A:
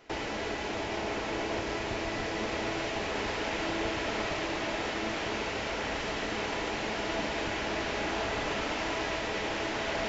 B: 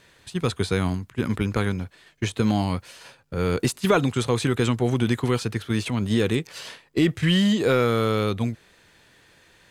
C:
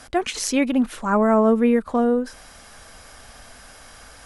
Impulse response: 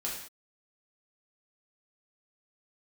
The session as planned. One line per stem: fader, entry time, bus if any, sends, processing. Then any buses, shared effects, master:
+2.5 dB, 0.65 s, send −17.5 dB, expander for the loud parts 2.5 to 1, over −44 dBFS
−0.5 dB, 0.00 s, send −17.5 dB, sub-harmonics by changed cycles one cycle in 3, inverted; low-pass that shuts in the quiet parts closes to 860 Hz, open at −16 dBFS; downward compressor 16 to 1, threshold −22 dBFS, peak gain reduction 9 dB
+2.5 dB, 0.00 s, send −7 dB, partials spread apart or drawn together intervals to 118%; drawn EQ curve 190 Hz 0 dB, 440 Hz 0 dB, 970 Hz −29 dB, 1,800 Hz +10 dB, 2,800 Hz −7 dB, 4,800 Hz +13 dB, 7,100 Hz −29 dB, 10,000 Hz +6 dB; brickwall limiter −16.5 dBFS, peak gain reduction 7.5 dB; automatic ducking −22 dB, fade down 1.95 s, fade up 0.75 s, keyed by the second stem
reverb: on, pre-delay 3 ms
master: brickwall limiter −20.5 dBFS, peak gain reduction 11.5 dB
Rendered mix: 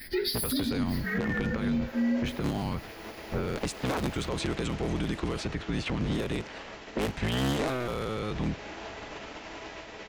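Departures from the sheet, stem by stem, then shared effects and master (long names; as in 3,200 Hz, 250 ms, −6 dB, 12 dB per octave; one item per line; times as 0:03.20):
stem A +2.5 dB → −6.5 dB
reverb return −7.0 dB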